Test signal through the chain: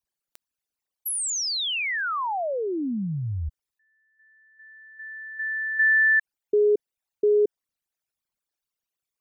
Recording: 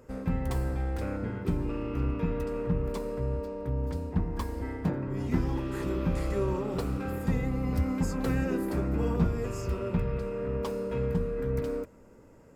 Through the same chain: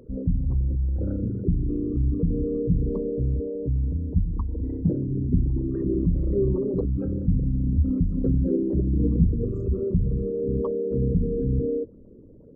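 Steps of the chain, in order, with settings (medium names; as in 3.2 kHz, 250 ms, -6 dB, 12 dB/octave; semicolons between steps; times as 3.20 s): resonances exaggerated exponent 3; trim +6.5 dB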